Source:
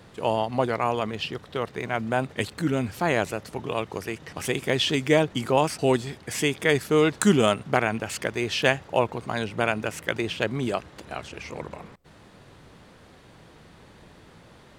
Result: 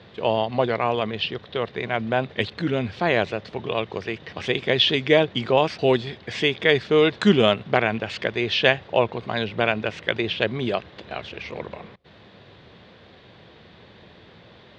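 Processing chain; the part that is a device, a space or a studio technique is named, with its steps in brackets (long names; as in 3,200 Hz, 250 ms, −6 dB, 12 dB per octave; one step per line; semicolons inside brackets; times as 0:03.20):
guitar cabinet (loudspeaker in its box 85–4,300 Hz, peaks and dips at 150 Hz −5 dB, 280 Hz −6 dB, 880 Hz −4 dB, 1,300 Hz −5 dB, 3,600 Hz +5 dB)
level +4 dB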